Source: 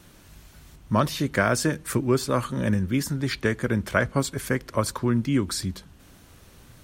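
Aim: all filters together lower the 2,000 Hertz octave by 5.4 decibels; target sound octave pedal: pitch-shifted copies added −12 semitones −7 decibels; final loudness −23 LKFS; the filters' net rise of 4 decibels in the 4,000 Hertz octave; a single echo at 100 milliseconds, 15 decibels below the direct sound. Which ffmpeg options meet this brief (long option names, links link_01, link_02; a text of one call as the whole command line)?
ffmpeg -i in.wav -filter_complex "[0:a]equalizer=frequency=2000:width_type=o:gain=-9,equalizer=frequency=4000:width_type=o:gain=7,aecho=1:1:100:0.178,asplit=2[link_01][link_02];[link_02]asetrate=22050,aresample=44100,atempo=2,volume=-7dB[link_03];[link_01][link_03]amix=inputs=2:normalize=0,volume=1.5dB" out.wav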